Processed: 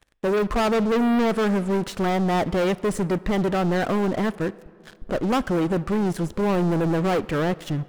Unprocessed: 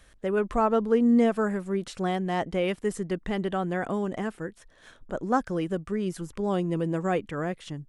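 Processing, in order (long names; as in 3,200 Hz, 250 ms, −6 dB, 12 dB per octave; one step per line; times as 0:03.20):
high-shelf EQ 2,400 Hz −8 dB
leveller curve on the samples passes 5
on a send: convolution reverb RT60 2.2 s, pre-delay 33 ms, DRR 19 dB
on the sum: level −5.5 dB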